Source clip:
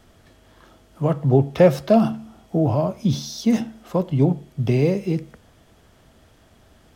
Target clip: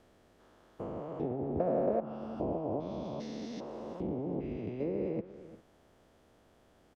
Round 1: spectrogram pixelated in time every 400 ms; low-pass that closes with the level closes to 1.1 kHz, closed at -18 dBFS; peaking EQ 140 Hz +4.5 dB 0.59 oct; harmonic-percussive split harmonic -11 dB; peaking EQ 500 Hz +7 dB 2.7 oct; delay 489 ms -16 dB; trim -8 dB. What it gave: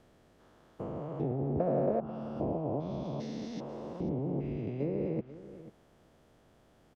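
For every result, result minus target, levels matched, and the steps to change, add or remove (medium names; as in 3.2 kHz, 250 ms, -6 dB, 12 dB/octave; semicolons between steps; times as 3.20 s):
echo 141 ms late; 125 Hz band +5.0 dB
change: delay 348 ms -16 dB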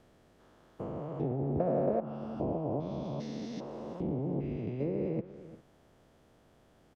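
125 Hz band +4.5 dB
change: first peaking EQ 140 Hz -5 dB 0.59 oct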